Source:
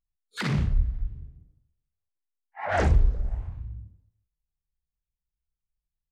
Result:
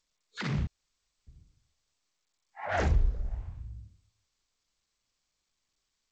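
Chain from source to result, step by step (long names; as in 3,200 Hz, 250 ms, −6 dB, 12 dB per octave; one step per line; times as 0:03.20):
0:00.67–0:01.27: fill with room tone
0:02.69–0:03.70: high-shelf EQ 2,000 Hz +4 dB
level −5.5 dB
G.722 64 kbit/s 16,000 Hz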